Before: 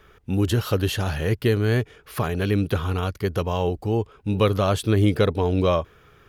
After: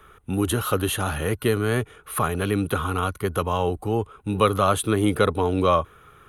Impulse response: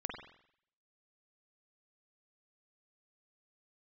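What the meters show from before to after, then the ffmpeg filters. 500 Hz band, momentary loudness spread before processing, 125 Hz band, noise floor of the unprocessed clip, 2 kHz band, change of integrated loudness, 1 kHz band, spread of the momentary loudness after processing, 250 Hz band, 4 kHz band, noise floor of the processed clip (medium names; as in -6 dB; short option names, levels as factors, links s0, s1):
0.0 dB, 6 LU, -4.0 dB, -54 dBFS, +1.5 dB, -0.5 dB, +5.5 dB, 7 LU, -1.0 dB, -0.5 dB, -52 dBFS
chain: -filter_complex "[0:a]superequalizer=9b=1.41:10b=2.24:14b=0.398:16b=3.55,acrossover=split=160[s0][s1];[s0]asoftclip=type=hard:threshold=0.0335[s2];[s2][s1]amix=inputs=2:normalize=0"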